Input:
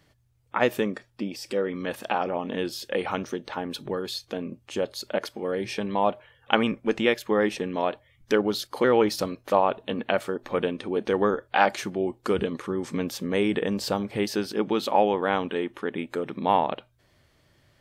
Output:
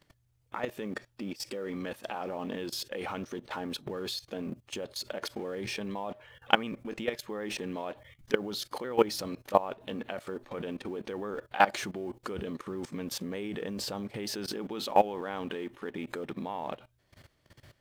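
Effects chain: companding laws mixed up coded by mu; level held to a coarse grid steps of 18 dB

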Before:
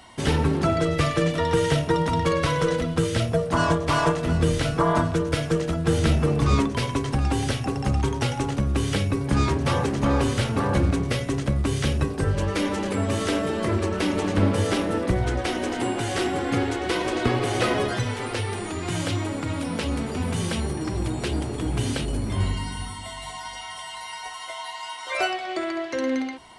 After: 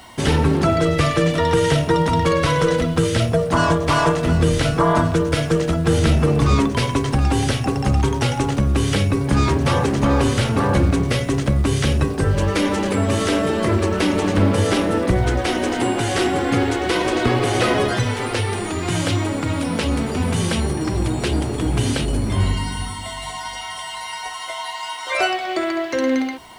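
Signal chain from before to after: in parallel at 0 dB: peak limiter -15.5 dBFS, peak gain reduction 7.5 dB; on the sum: bit crusher 9-bit

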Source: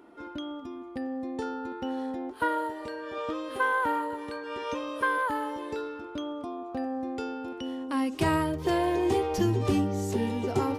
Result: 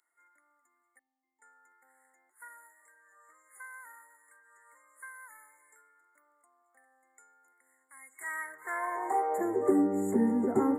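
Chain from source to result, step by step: 0.99–1.42 s: vowel filter u; FFT band-reject 2.2–6.8 kHz; high-pass sweep 3.8 kHz -> 230 Hz, 7.93–10.08 s; trim -3 dB

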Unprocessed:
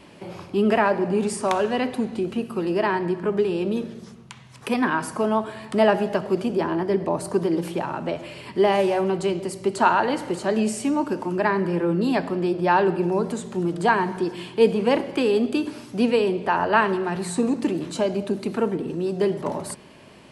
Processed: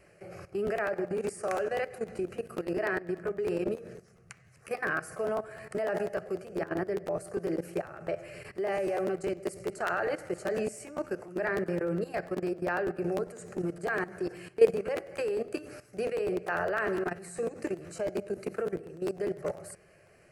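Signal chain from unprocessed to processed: static phaser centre 950 Hz, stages 6; level held to a coarse grid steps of 15 dB; crackling interface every 0.10 s, samples 512, repeat, from 0.66 s

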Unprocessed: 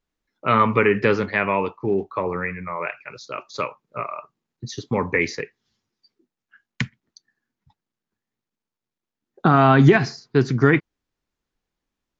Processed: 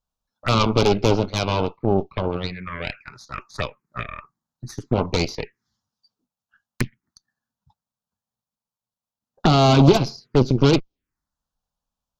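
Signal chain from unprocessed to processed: Chebyshev shaper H 8 -13 dB, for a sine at -2.5 dBFS; touch-sensitive phaser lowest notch 350 Hz, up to 1.8 kHz, full sweep at -18.5 dBFS

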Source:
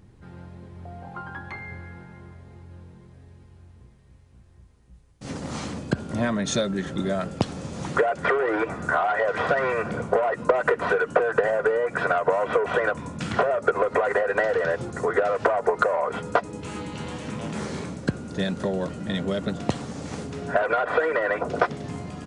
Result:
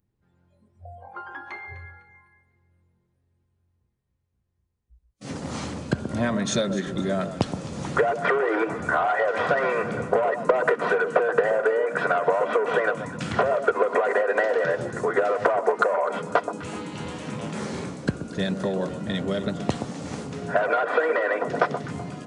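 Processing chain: spectral noise reduction 23 dB; echo whose repeats swap between lows and highs 126 ms, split 1.2 kHz, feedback 53%, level -9 dB

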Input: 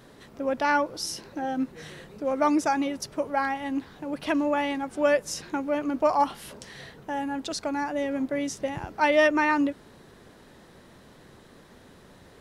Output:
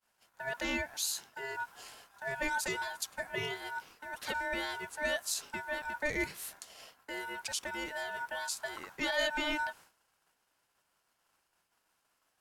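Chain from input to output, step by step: expander -40 dBFS; pre-emphasis filter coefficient 0.8; in parallel at -1 dB: peak limiter -29 dBFS, peak gain reduction 7.5 dB; on the sum: ring modulator 1.2 kHz

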